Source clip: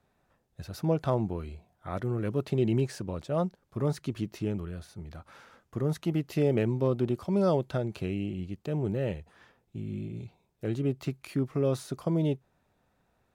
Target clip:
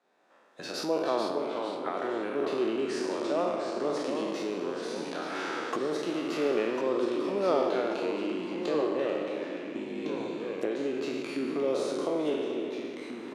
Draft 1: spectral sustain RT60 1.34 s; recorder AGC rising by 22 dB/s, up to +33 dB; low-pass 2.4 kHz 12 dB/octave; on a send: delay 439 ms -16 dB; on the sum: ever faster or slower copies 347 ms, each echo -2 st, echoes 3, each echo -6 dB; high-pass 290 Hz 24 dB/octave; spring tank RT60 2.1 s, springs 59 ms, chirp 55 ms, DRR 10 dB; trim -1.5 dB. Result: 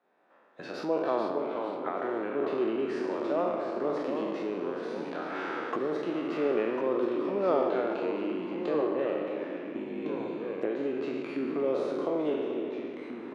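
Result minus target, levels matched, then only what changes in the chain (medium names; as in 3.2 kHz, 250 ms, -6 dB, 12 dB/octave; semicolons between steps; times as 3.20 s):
8 kHz band -15.5 dB
change: low-pass 6.7 kHz 12 dB/octave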